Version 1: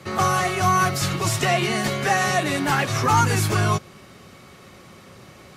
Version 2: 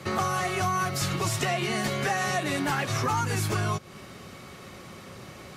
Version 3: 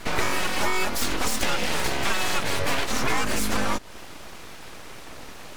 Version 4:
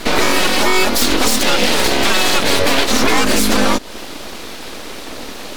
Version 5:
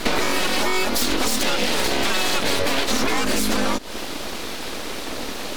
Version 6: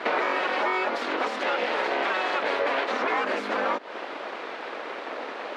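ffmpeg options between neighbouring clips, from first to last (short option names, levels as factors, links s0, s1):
-af "acompressor=threshold=0.0447:ratio=4,volume=1.19"
-af "aeval=exprs='abs(val(0))':c=same,volume=1.88"
-af "equalizer=f=125:t=o:w=1:g=-7,equalizer=f=250:t=o:w=1:g=7,equalizer=f=500:t=o:w=1:g=4,equalizer=f=4000:t=o:w=1:g=6,equalizer=f=16000:t=o:w=1:g=4,alimiter=level_in=3.16:limit=0.891:release=50:level=0:latency=1,volume=0.891"
-af "acompressor=threshold=0.158:ratio=6"
-af "asuperpass=centerf=960:order=4:qfactor=0.58"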